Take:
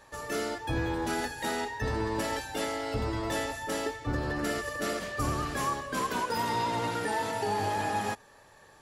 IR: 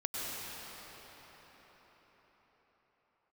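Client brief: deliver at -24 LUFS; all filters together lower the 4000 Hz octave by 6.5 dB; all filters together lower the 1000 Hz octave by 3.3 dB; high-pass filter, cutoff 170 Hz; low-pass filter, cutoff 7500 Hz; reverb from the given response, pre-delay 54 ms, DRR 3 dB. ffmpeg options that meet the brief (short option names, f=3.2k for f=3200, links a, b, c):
-filter_complex "[0:a]highpass=170,lowpass=7.5k,equalizer=f=1k:t=o:g=-3.5,equalizer=f=4k:t=o:g=-8,asplit=2[a][b];[1:a]atrim=start_sample=2205,adelay=54[c];[b][c]afir=irnorm=-1:irlink=0,volume=-8.5dB[d];[a][d]amix=inputs=2:normalize=0,volume=8.5dB"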